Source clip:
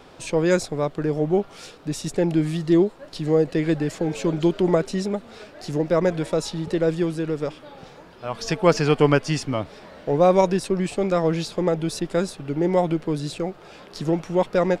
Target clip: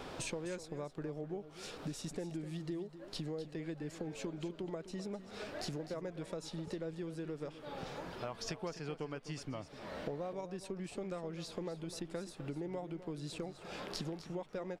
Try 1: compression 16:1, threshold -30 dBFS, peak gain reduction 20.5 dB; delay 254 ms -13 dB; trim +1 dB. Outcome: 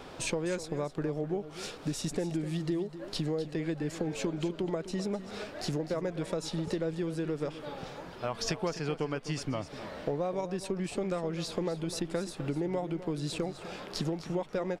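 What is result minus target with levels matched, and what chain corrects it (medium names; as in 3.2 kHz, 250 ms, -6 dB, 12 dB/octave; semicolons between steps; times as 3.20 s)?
compression: peak gain reduction -9 dB
compression 16:1, threshold -39.5 dBFS, peak gain reduction 29 dB; delay 254 ms -13 dB; trim +1 dB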